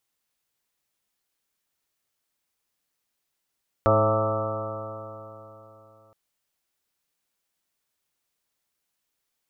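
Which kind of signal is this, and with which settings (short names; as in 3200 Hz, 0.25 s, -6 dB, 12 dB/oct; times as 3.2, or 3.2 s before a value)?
stretched partials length 2.27 s, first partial 106 Hz, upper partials -8.5/-6.5/-6/3/0/-9.5/-7.5/-15/-1.5/-3 dB, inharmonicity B 0.0022, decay 3.42 s, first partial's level -22.5 dB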